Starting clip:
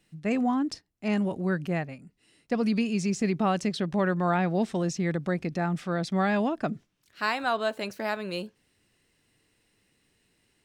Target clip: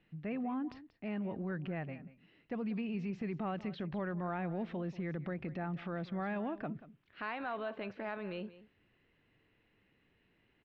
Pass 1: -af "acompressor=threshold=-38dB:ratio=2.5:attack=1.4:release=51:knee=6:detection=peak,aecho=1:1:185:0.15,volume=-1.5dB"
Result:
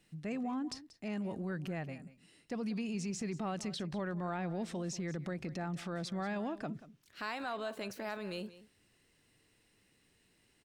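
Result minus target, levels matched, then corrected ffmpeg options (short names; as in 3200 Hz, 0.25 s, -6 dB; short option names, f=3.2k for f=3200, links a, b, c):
4000 Hz band +8.0 dB
-af "acompressor=threshold=-38dB:ratio=2.5:attack=1.4:release=51:knee=6:detection=peak,lowpass=f=2.9k:w=0.5412,lowpass=f=2.9k:w=1.3066,aecho=1:1:185:0.15,volume=-1.5dB"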